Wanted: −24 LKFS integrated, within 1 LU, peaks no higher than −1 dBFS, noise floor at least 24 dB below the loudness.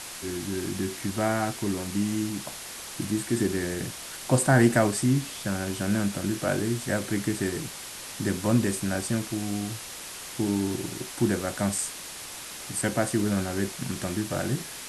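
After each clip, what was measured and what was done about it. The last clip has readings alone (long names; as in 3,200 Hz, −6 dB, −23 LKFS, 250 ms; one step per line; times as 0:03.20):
background noise floor −40 dBFS; target noise floor −52 dBFS; integrated loudness −28.0 LKFS; sample peak −7.5 dBFS; target loudness −24.0 LKFS
→ noise reduction from a noise print 12 dB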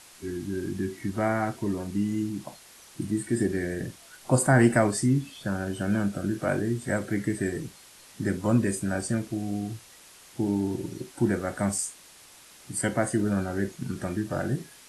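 background noise floor −52 dBFS; integrated loudness −28.0 LKFS; sample peak −7.5 dBFS; target loudness −24.0 LKFS
→ level +4 dB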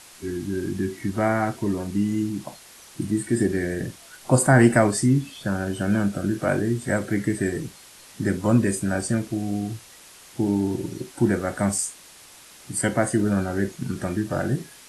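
integrated loudness −24.0 LKFS; sample peak −3.5 dBFS; background noise floor −48 dBFS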